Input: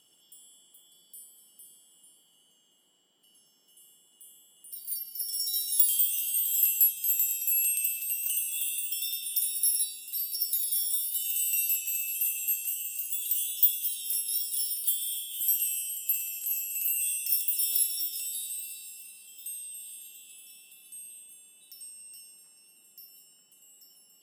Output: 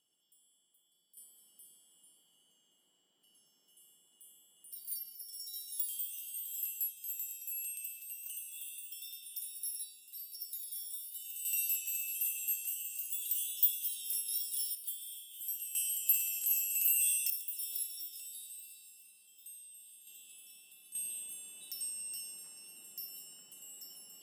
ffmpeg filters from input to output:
-af "asetnsamples=n=441:p=0,asendcmd='1.17 volume volume -6dB;5.15 volume volume -14dB;11.45 volume volume -6dB;14.75 volume volume -13dB;15.75 volume volume -0.5dB;17.3 volume volume -12dB;20.07 volume volume -5dB;20.95 volume volume 5.5dB',volume=0.168"

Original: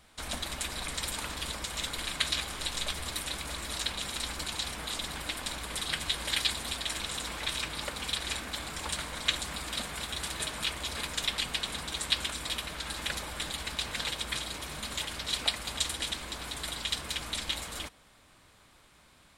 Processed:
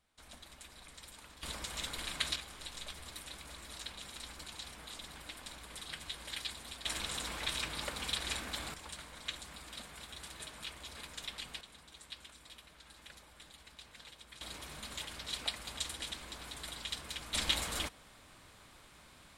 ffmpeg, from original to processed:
-af "asetnsamples=n=441:p=0,asendcmd='1.43 volume volume -5.5dB;2.36 volume volume -12dB;6.85 volume volume -3.5dB;8.74 volume volume -12.5dB;11.61 volume volume -20dB;14.41 volume volume -8dB;17.34 volume volume 1.5dB',volume=0.126"

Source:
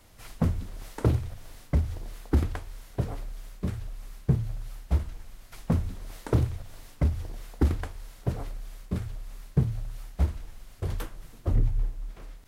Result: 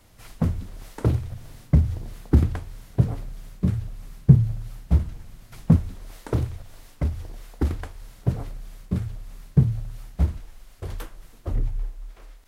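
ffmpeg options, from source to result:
-af "asetnsamples=n=441:p=0,asendcmd='1.3 equalizer g 11.5;5.76 equalizer g -0.5;8.01 equalizer g 7;10.4 equalizer g -4.5;11.76 equalizer g -11',equalizer=f=140:t=o:w=1.9:g=3"

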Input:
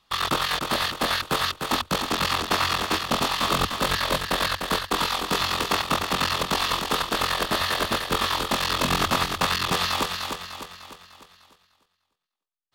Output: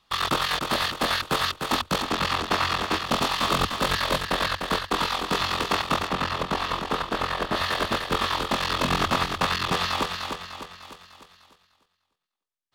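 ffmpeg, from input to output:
-af "asetnsamples=n=441:p=0,asendcmd='2.03 lowpass f 4100;3.06 lowpass f 8100;4.25 lowpass f 4800;6.08 lowpass f 1800;7.56 lowpass f 4200;10.82 lowpass f 8200',lowpass=f=10000:p=1"

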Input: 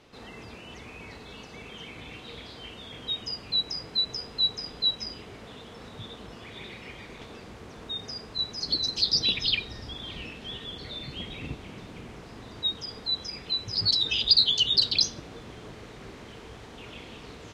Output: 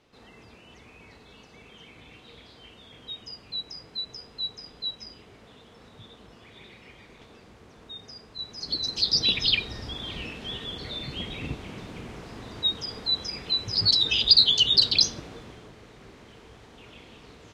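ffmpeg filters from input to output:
-af "volume=1.41,afade=t=in:st=8.38:d=1.06:silence=0.316228,afade=t=out:st=15.1:d=0.61:silence=0.398107"

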